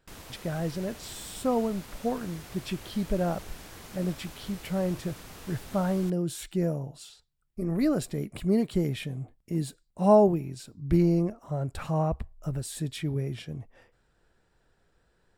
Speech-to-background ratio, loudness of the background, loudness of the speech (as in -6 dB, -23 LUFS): 16.0 dB, -45.5 LUFS, -29.5 LUFS